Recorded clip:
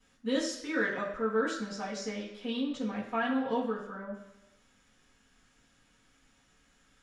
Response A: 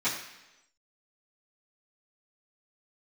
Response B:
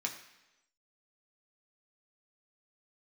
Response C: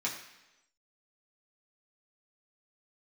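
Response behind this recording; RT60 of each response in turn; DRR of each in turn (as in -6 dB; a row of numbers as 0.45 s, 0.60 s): A; 1.0 s, 1.0 s, 1.0 s; -14.5 dB, 0.0 dB, -5.0 dB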